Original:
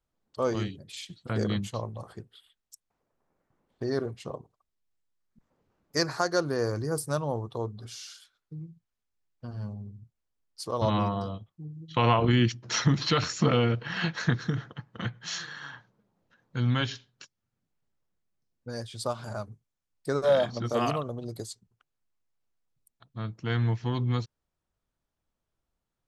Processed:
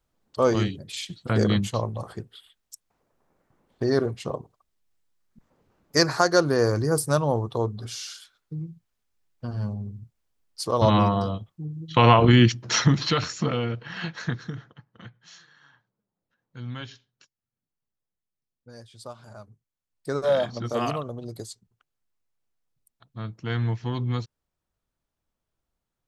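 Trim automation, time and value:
12.63 s +7 dB
13.55 s -3 dB
14.32 s -3 dB
15.46 s -16 dB
16.78 s -9 dB
19.36 s -9 dB
20.15 s +0.5 dB

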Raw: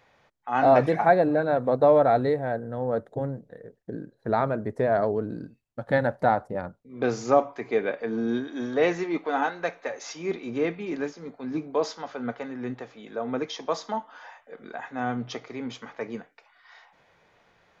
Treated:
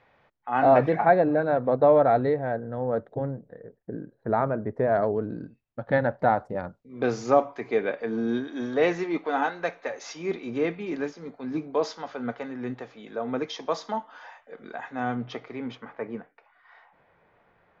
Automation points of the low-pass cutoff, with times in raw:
3 kHz
from 3.31 s 1.9 kHz
from 4.89 s 3.2 kHz
from 6.36 s 6.4 kHz
from 15.15 s 3.3 kHz
from 15.75 s 1.9 kHz

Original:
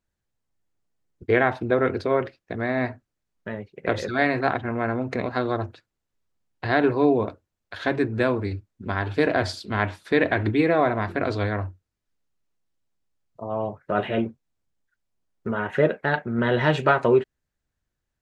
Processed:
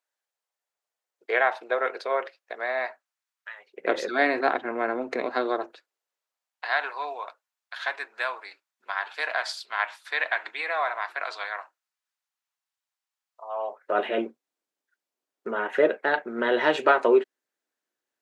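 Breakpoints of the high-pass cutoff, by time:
high-pass 24 dB/octave
2.77 s 550 Hz
3.54 s 1.2 kHz
3.79 s 300 Hz
5.39 s 300 Hz
6.78 s 820 Hz
13.43 s 820 Hz
14.02 s 300 Hz

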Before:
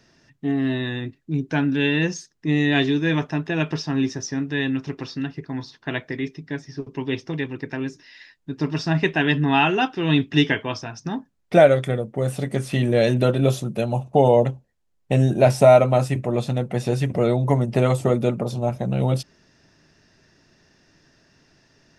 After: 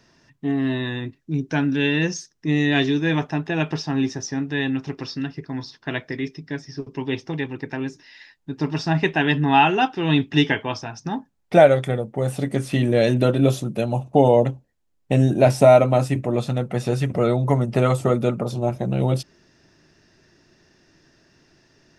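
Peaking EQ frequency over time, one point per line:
peaking EQ +6.5 dB 0.25 oct
1 kHz
from 1.19 s 5.7 kHz
from 3.00 s 790 Hz
from 4.95 s 5.2 kHz
from 7.01 s 830 Hz
from 12.38 s 290 Hz
from 16.39 s 1.3 kHz
from 18.52 s 350 Hz

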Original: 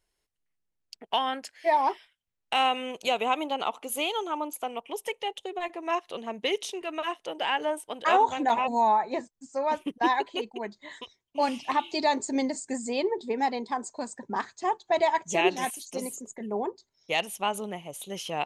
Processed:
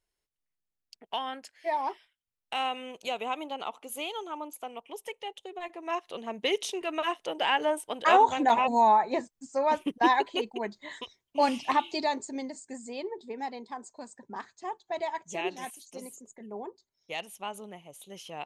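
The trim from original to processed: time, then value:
5.52 s -6.5 dB
6.72 s +1.5 dB
11.72 s +1.5 dB
12.39 s -9 dB

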